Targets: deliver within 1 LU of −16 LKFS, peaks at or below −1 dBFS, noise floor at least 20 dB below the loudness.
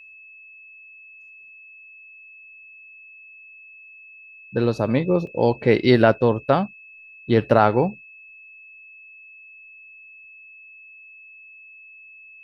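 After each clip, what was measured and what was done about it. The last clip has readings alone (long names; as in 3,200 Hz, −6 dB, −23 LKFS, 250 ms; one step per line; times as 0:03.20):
number of dropouts 1; longest dropout 1.8 ms; interfering tone 2,600 Hz; level of the tone −43 dBFS; integrated loudness −20.0 LKFS; sample peak −1.5 dBFS; target loudness −16.0 LKFS
→ repair the gap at 0:05.27, 1.8 ms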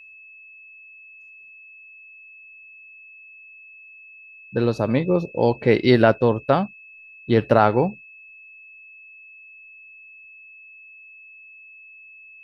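number of dropouts 0; interfering tone 2,600 Hz; level of the tone −43 dBFS
→ notch filter 2,600 Hz, Q 30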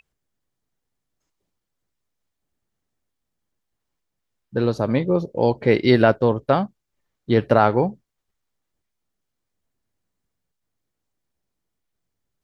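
interfering tone none found; integrated loudness −20.0 LKFS; sample peak −1.5 dBFS; target loudness −16.0 LKFS
→ level +4 dB
brickwall limiter −1 dBFS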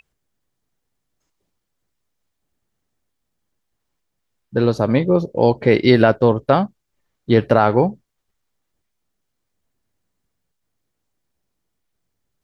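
integrated loudness −16.5 LKFS; sample peak −1.0 dBFS; background noise floor −76 dBFS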